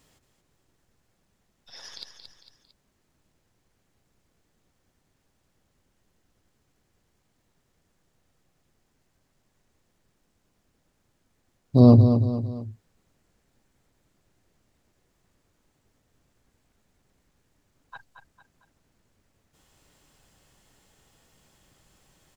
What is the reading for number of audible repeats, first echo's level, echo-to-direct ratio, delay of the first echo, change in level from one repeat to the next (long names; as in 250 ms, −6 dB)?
3, −8.0 dB, −7.0 dB, 226 ms, −7.0 dB